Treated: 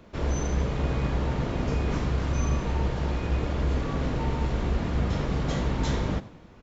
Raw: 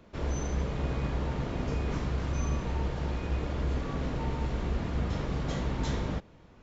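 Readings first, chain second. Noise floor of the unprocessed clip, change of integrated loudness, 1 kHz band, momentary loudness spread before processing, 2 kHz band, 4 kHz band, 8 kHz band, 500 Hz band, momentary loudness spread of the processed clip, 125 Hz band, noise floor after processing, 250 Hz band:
-55 dBFS, +4.5 dB, +4.5 dB, 2 LU, +4.5 dB, +4.5 dB, no reading, +4.5 dB, 2 LU, +4.5 dB, -50 dBFS, +4.5 dB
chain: frequency-shifting echo 93 ms, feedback 44%, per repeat +51 Hz, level -18 dB; trim +4.5 dB

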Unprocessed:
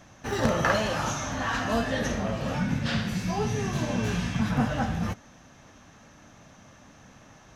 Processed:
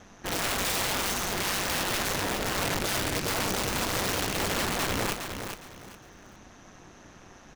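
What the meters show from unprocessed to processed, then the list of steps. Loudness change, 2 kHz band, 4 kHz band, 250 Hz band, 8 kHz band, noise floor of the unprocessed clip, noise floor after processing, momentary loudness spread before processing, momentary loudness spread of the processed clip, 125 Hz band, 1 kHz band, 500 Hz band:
0.0 dB, +1.0 dB, +6.5 dB, -6.5 dB, +8.0 dB, -53 dBFS, -52 dBFS, 5 LU, 9 LU, -7.5 dB, -0.5 dB, -2.5 dB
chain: ring modulator 97 Hz; integer overflow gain 26.5 dB; feedback delay 411 ms, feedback 26%, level -7 dB; trim +3.5 dB

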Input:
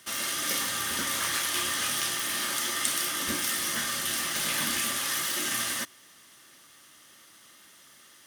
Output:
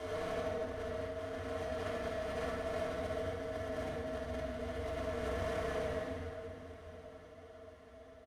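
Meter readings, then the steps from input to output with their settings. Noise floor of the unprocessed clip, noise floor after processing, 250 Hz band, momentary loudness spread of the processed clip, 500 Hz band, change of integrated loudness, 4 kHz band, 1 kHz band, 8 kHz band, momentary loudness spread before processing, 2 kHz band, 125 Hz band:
-55 dBFS, -56 dBFS, -4.0 dB, 16 LU, +7.5 dB, -12.5 dB, -23.0 dB, -8.0 dB, -31.5 dB, 2 LU, -14.5 dB, +4.0 dB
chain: spectral blur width 852 ms; two resonant band-passes 310 Hz, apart 1.6 oct; comb 7.1 ms, depth 85%; transient shaper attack +1 dB, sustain -6 dB; compressor with a negative ratio -52 dBFS, ratio -0.5; ring modulator 89 Hz; harmonic-percussive split percussive -6 dB; one-sided clip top -54.5 dBFS; feedback delay 1179 ms, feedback 37%, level -18 dB; simulated room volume 2300 m³, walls mixed, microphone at 3.2 m; trim +13.5 dB

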